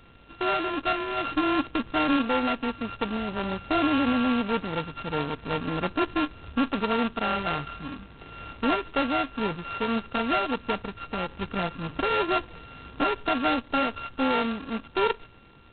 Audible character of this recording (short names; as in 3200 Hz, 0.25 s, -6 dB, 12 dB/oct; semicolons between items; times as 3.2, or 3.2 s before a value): a buzz of ramps at a fixed pitch in blocks of 32 samples; G.726